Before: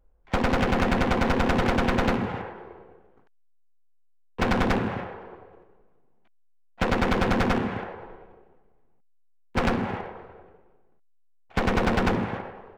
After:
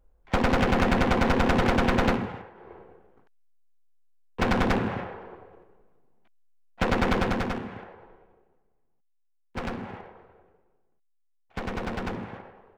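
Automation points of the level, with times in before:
0:02.10 +0.5 dB
0:02.51 −11 dB
0:02.73 −0.5 dB
0:07.15 −0.5 dB
0:07.63 −9 dB

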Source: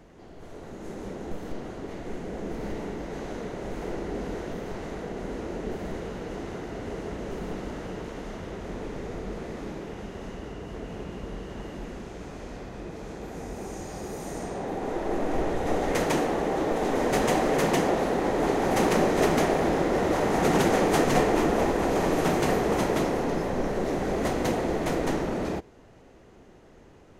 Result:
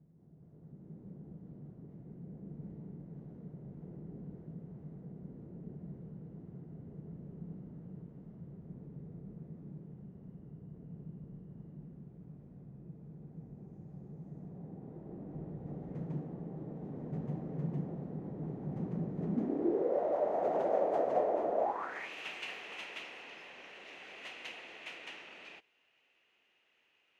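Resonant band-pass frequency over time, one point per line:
resonant band-pass, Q 5
0:19.16 150 Hz
0:20.01 610 Hz
0:21.60 610 Hz
0:22.10 2,700 Hz

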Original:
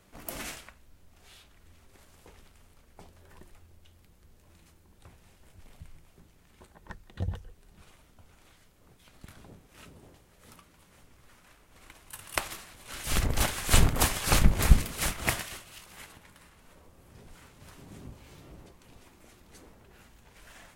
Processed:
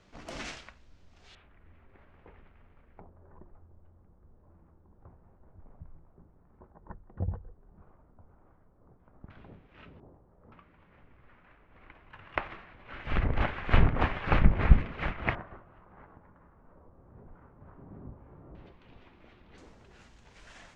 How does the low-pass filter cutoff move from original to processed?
low-pass filter 24 dB per octave
6,000 Hz
from 0:01.35 2,300 Hz
from 0:03.00 1,200 Hz
from 0:09.30 2,900 Hz
from 0:10.00 1,100 Hz
from 0:10.52 2,400 Hz
from 0:15.35 1,300 Hz
from 0:18.55 3,400 Hz
from 0:19.58 7,000 Hz

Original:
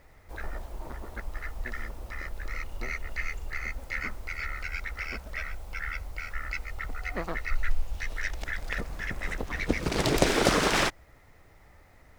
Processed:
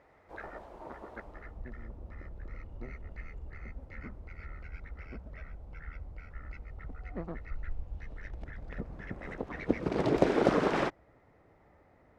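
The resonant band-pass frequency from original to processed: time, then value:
resonant band-pass, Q 0.54
0:01.12 620 Hz
0:01.64 140 Hz
0:08.69 140 Hz
0:09.41 360 Hz

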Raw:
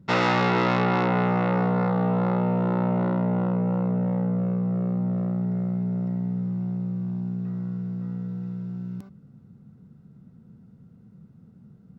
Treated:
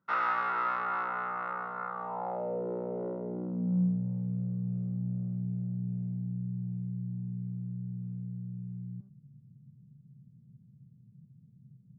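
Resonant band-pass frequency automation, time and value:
resonant band-pass, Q 4.3
0:01.92 1,300 Hz
0:02.64 440 Hz
0:03.17 440 Hz
0:04.05 130 Hz

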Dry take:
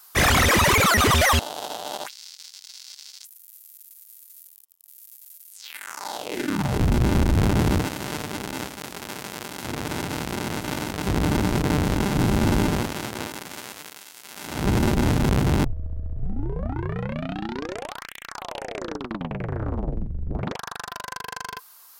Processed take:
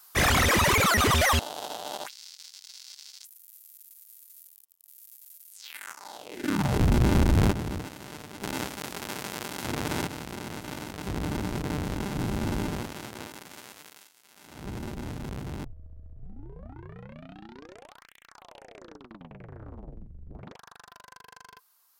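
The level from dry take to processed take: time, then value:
−4 dB
from 0:05.93 −11 dB
from 0:06.44 −1.5 dB
from 0:07.52 −12 dB
from 0:08.42 −1 dB
from 0:10.07 −9 dB
from 0:14.07 −16 dB

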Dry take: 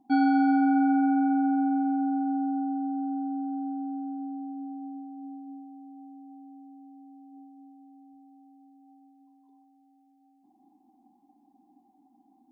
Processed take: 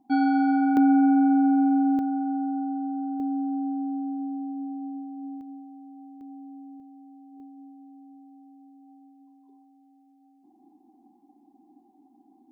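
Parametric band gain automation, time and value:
parametric band 390 Hz
+0.5 dB
from 0:00.77 +12.5 dB
from 0:01.99 +1 dB
from 0:03.20 +11 dB
from 0:05.41 +3.5 dB
from 0:06.21 +13.5 dB
from 0:06.80 +3.5 dB
from 0:07.40 +12 dB

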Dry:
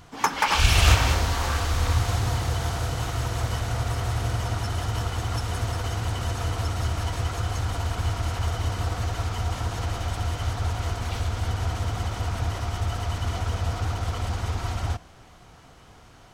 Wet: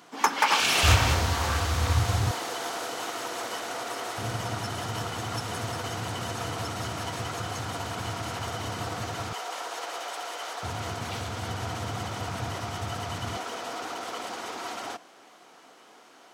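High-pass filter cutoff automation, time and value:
high-pass filter 24 dB per octave
220 Hz
from 0:00.83 73 Hz
from 0:02.31 280 Hz
from 0:04.18 130 Hz
from 0:09.33 420 Hz
from 0:10.63 120 Hz
from 0:13.37 270 Hz

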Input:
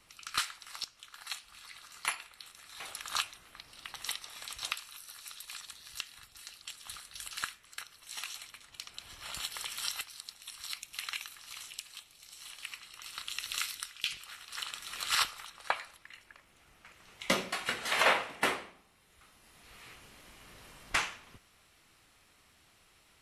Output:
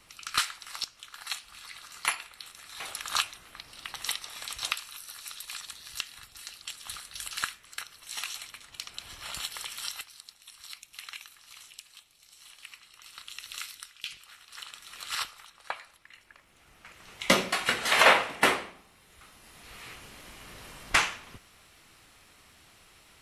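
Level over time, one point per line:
0:09.08 +5 dB
0:10.40 −4 dB
0:15.79 −4 dB
0:17.10 +7 dB

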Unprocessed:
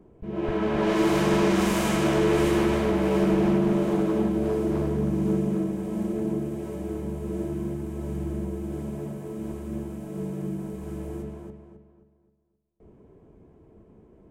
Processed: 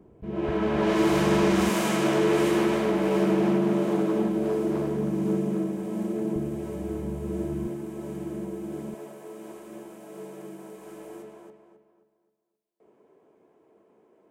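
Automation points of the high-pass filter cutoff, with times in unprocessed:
43 Hz
from 0:01.69 170 Hz
from 0:06.36 48 Hz
from 0:07.67 200 Hz
from 0:08.94 460 Hz

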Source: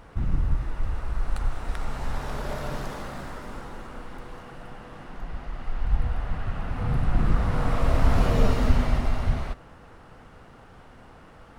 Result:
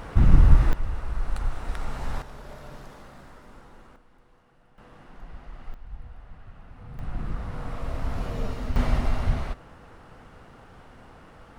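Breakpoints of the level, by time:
+9.5 dB
from 0:00.73 −1 dB
from 0:02.22 −11 dB
from 0:03.96 −19 dB
from 0:04.78 −7.5 dB
from 0:05.74 −16.5 dB
from 0:06.99 −9.5 dB
from 0:08.76 0 dB

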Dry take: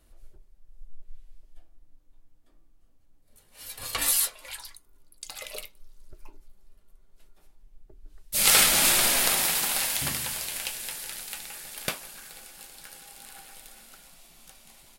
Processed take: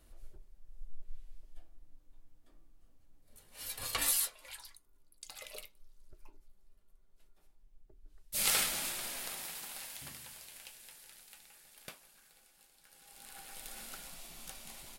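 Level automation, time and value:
0:03.67 −1 dB
0:04.29 −9 dB
0:08.41 −9 dB
0:08.94 −18.5 dB
0:12.82 −18.5 dB
0:13.16 −8 dB
0:13.81 +3.5 dB

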